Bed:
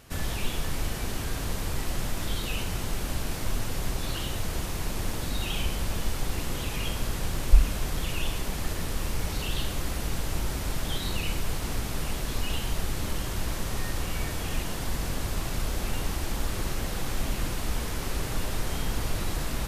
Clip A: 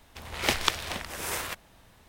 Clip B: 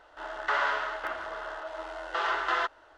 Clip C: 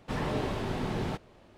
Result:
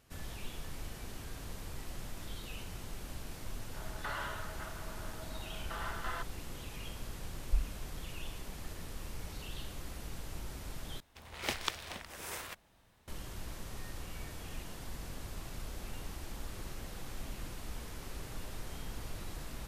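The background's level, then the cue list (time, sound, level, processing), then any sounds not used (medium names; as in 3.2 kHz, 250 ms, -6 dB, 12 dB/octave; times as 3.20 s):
bed -13.5 dB
3.56 s: add B -13 dB
11.00 s: replace with A -10 dB
not used: C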